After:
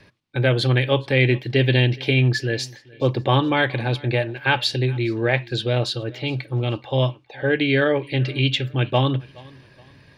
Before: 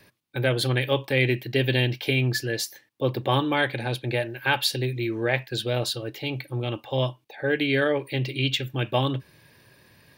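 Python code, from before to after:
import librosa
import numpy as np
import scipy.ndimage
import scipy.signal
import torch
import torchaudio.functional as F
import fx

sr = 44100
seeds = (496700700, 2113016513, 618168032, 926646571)

y = scipy.signal.sosfilt(scipy.signal.butter(2, 5300.0, 'lowpass', fs=sr, output='sos'), x)
y = fx.low_shelf(y, sr, hz=100.0, db=8.0)
y = fx.echo_feedback(y, sr, ms=421, feedback_pct=39, wet_db=-24.0)
y = y * 10.0 ** (3.5 / 20.0)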